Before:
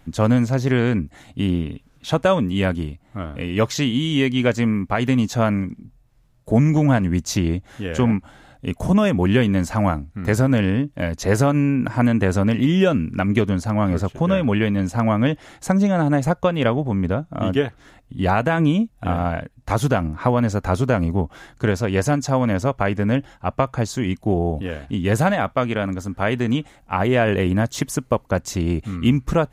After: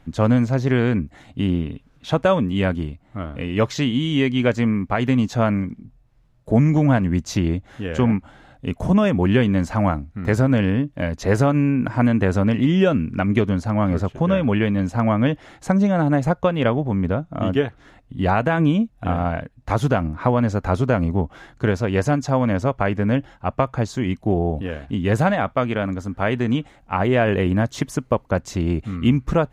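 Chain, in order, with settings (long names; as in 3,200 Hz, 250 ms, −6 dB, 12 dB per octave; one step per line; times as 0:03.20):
high-shelf EQ 6,500 Hz −12 dB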